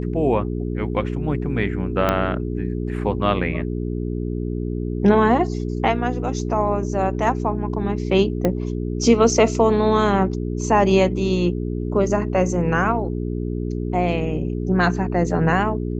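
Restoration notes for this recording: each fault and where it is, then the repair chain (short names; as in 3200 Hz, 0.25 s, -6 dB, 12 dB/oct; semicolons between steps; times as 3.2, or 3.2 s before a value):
hum 60 Hz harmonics 7 -25 dBFS
2.09 pop -6 dBFS
8.45 pop -8 dBFS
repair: de-click; de-hum 60 Hz, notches 7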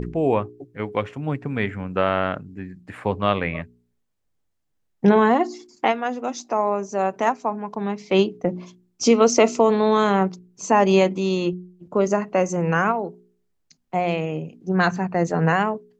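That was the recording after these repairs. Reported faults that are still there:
2.09 pop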